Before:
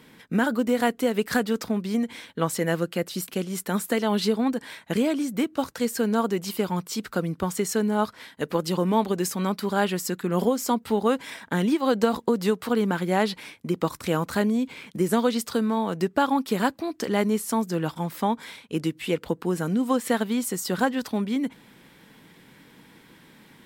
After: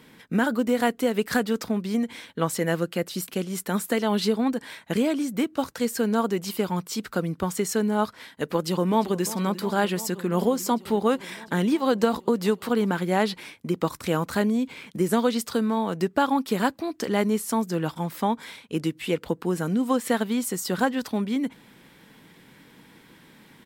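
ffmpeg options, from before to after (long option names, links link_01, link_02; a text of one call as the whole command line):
ffmpeg -i in.wav -filter_complex "[0:a]asplit=2[link_01][link_02];[link_02]afade=type=in:start_time=8.56:duration=0.01,afade=type=out:start_time=9.23:duration=0.01,aecho=0:1:350|700|1050|1400|1750|2100|2450|2800|3150|3500|3850|4200:0.158489|0.134716|0.114509|0.0973323|0.0827324|0.0703226|0.0597742|0.050808|0.0431868|0.0367088|0.0312025|0.0265221[link_03];[link_01][link_03]amix=inputs=2:normalize=0" out.wav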